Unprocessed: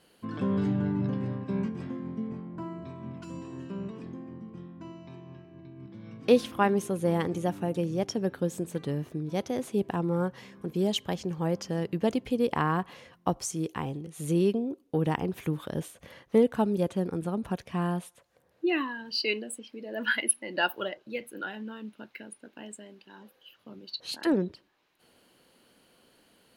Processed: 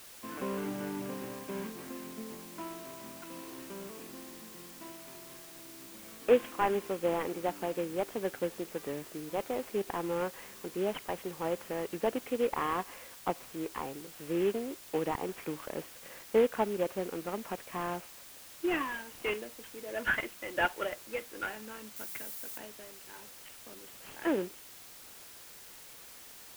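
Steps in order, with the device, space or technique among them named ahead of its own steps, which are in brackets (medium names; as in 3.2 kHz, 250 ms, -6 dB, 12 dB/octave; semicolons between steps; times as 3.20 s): army field radio (band-pass 380–2900 Hz; CVSD coder 16 kbps; white noise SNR 15 dB); 21.96–22.58 s: treble shelf 7.8 kHz +11.5 dB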